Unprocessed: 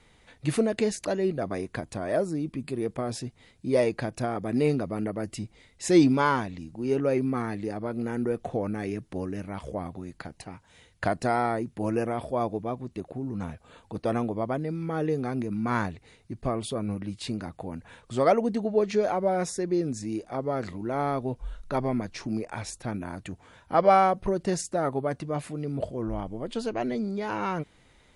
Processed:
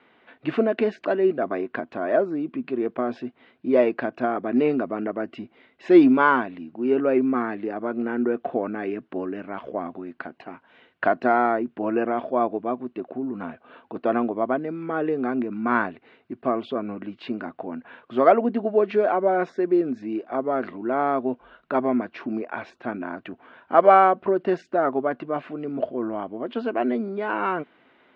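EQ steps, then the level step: cabinet simulation 250–3200 Hz, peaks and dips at 250 Hz +9 dB, 370 Hz +7 dB, 670 Hz +7 dB, 1.1 kHz +6 dB, 1.5 kHz +8 dB, 2.8 kHz +4 dB; 0.0 dB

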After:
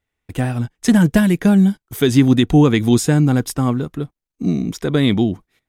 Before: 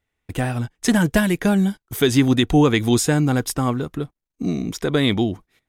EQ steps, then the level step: dynamic bell 180 Hz, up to +7 dB, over -29 dBFS, Q 0.77; -1.0 dB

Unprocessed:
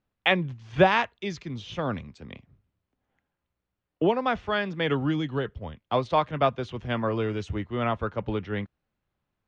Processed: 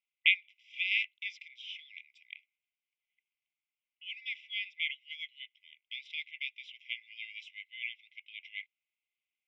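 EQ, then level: Savitzky-Golay filter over 25 samples; brick-wall FIR high-pass 2 kHz; +3.0 dB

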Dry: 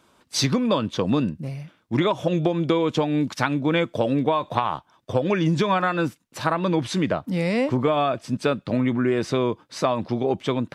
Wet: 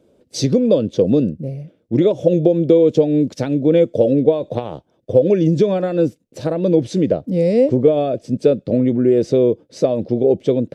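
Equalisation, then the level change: dynamic bell 6 kHz, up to +8 dB, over -48 dBFS, Q 0.86; resonant low shelf 730 Hz +12.5 dB, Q 3; -8.5 dB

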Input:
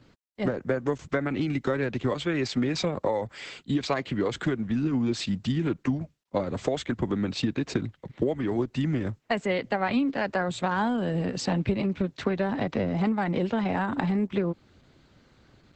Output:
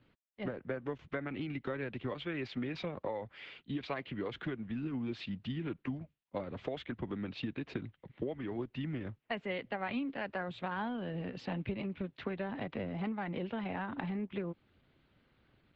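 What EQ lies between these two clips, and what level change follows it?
four-pole ladder low-pass 3.7 kHz, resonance 35%; -4.0 dB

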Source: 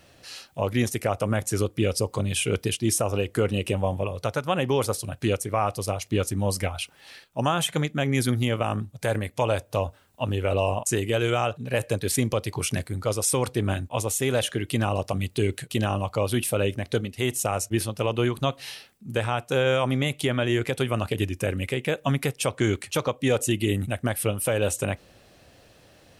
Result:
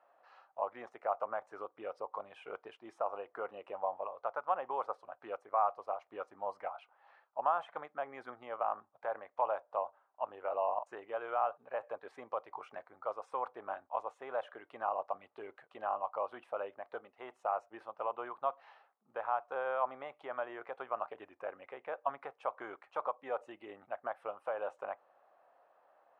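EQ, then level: Butterworth band-pass 920 Hz, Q 1.5; -3.5 dB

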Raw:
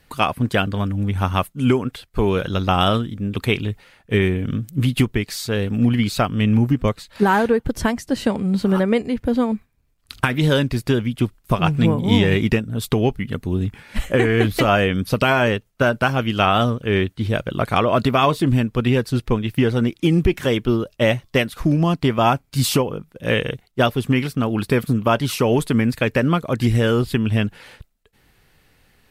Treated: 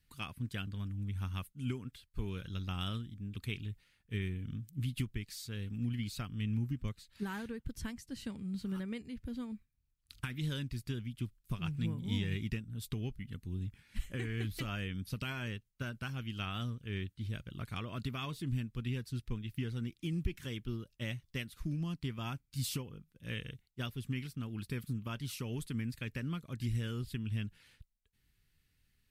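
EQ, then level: amplifier tone stack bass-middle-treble 6-0-2; -2.0 dB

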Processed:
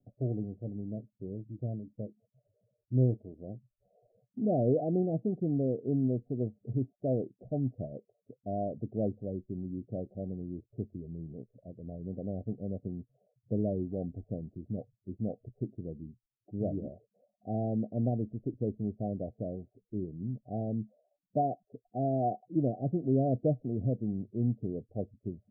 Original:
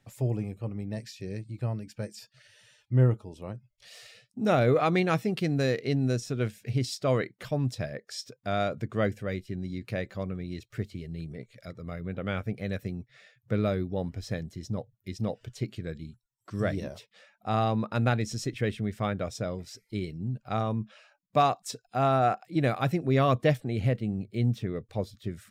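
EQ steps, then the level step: Chebyshev low-pass 740 Hz, order 8; peaking EQ 270 Hz +7 dB 0.94 oct; -6.0 dB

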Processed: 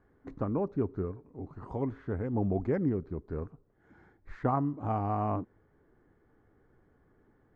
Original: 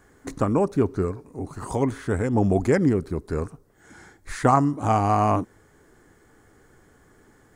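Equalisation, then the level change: tape spacing loss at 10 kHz 43 dB; -8.0 dB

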